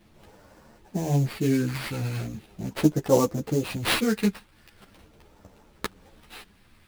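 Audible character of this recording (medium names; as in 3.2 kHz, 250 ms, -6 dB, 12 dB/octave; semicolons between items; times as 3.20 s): phasing stages 2, 0.4 Hz, lowest notch 600–3000 Hz; aliases and images of a low sample rate 6.7 kHz, jitter 20%; a shimmering, thickened sound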